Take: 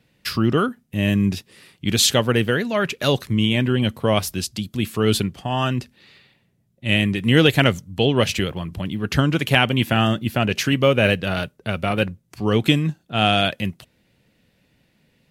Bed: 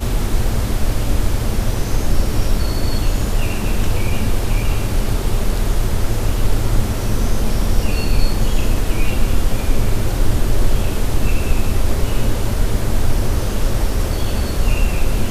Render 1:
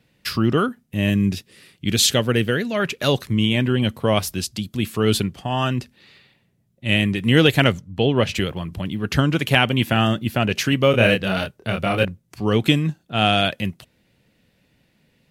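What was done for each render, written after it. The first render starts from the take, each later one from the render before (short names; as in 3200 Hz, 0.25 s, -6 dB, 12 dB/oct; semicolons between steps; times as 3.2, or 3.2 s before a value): 1.1–2.8 bell 930 Hz -5.5 dB 0.91 oct; 7.72–8.35 LPF 2700 Hz 6 dB/oct; 10.91–12.05 doubler 26 ms -3.5 dB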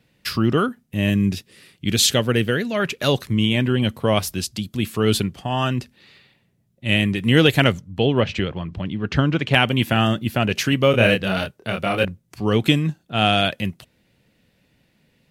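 8.2–9.54 air absorption 130 m; 11.53–12.04 low shelf 96 Hz -10.5 dB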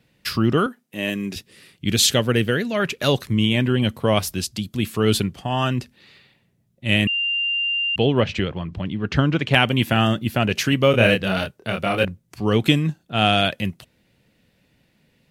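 0.66–1.36 HPF 310 Hz; 7.07–7.96 bleep 2790 Hz -19.5 dBFS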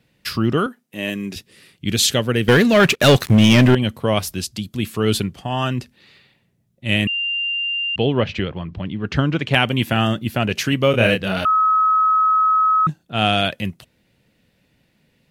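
2.48–3.75 sample leveller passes 3; 7.52–9.04 LPF 5400 Hz; 11.45–12.87 bleep 1280 Hz -12.5 dBFS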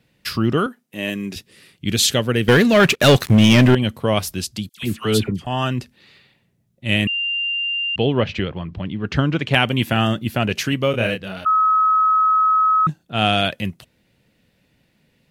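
4.69–5.47 dispersion lows, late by 85 ms, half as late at 1300 Hz; 10.49–11.46 fade out, to -12 dB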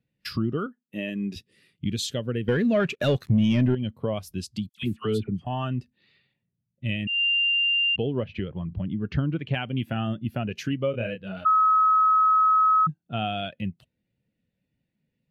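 compressor 3:1, threshold -29 dBFS, peak gain reduction 14.5 dB; spectral expander 1.5:1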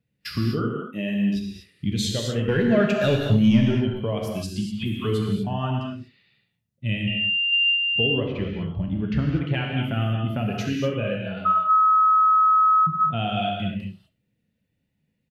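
feedback echo 70 ms, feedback 20%, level -17 dB; non-linear reverb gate 0.27 s flat, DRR -0.5 dB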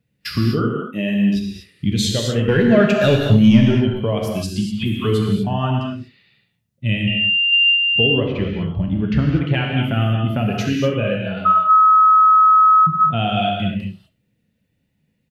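gain +6 dB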